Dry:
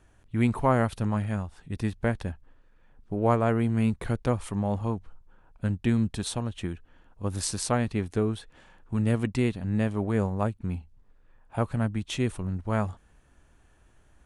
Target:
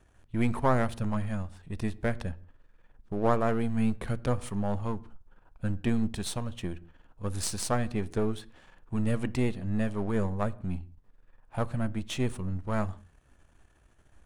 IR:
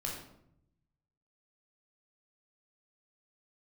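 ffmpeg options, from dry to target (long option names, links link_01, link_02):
-filter_complex "[0:a]aeval=exprs='if(lt(val(0),0),0.447*val(0),val(0))':channel_layout=same,asplit=2[link_01][link_02];[1:a]atrim=start_sample=2205,afade=type=out:start_time=0.24:duration=0.01,atrim=end_sample=11025,highshelf=frequency=4700:gain=-7[link_03];[link_02][link_03]afir=irnorm=-1:irlink=0,volume=-17.5dB[link_04];[link_01][link_04]amix=inputs=2:normalize=0"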